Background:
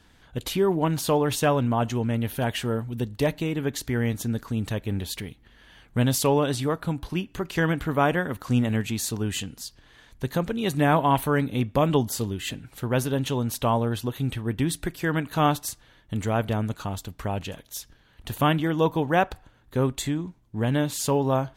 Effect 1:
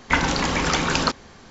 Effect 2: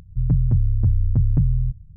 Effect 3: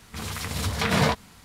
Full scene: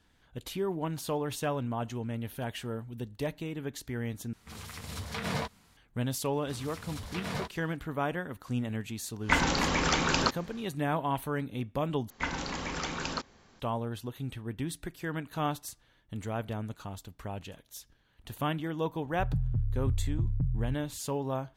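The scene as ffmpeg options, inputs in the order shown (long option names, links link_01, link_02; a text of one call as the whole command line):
ffmpeg -i bed.wav -i cue0.wav -i cue1.wav -i cue2.wav -filter_complex "[3:a]asplit=2[link_01][link_02];[1:a]asplit=2[link_03][link_04];[0:a]volume=-10dB,asplit=3[link_05][link_06][link_07];[link_05]atrim=end=4.334[link_08];[link_01]atrim=end=1.44,asetpts=PTS-STARTPTS,volume=-11.5dB[link_09];[link_06]atrim=start=5.766:end=12.104[link_10];[link_04]atrim=end=1.5,asetpts=PTS-STARTPTS,volume=-13.5dB[link_11];[link_07]atrim=start=13.596[link_12];[link_02]atrim=end=1.44,asetpts=PTS-STARTPTS,volume=-14.5dB,afade=type=in:duration=0.004:curve=hsin,afade=type=out:start_time=1.436:duration=0.004:curve=hsin,adelay=6330[link_13];[link_03]atrim=end=1.5,asetpts=PTS-STARTPTS,volume=-5.5dB,afade=type=in:duration=0.1,afade=type=out:start_time=1.4:duration=0.1,adelay=9190[link_14];[2:a]atrim=end=1.96,asetpts=PTS-STARTPTS,volume=-12dB,afade=type=in:duration=0.004:curve=hsin,afade=type=out:start_time=1.956:duration=0.004:curve=hsin,adelay=19030[link_15];[link_08][link_09]acrossfade=duration=0.004:curve1=hsin:curve2=hsin[link_16];[link_16][link_10]acrossfade=duration=0.004:curve1=hsin:curve2=hsin[link_17];[link_17][link_11]acrossfade=duration=0.004:curve1=hsin:curve2=hsin[link_18];[link_18][link_12]acrossfade=duration=0.004:curve1=hsin:curve2=hsin[link_19];[link_19][link_13][link_14][link_15]amix=inputs=4:normalize=0" out.wav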